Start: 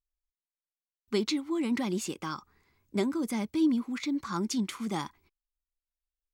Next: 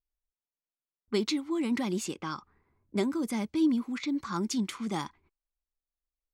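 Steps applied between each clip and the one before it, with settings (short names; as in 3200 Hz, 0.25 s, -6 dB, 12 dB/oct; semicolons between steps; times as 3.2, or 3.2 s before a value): low-pass opened by the level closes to 940 Hz, open at -28 dBFS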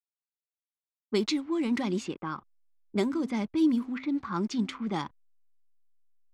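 de-hum 130.6 Hz, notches 2; backlash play -48 dBFS; low-pass opened by the level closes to 400 Hz, open at -24.5 dBFS; gain +1.5 dB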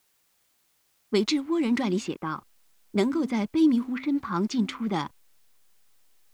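requantised 12-bit, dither triangular; gain +3.5 dB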